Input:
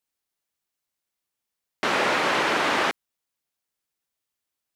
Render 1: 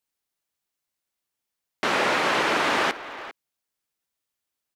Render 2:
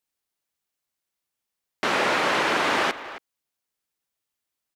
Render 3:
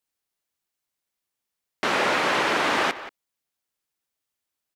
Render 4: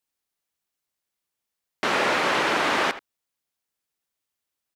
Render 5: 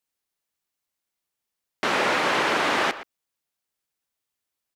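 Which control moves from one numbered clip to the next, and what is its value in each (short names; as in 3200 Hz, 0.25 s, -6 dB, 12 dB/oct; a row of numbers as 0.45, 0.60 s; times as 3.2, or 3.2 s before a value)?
speakerphone echo, time: 400, 270, 180, 80, 120 ms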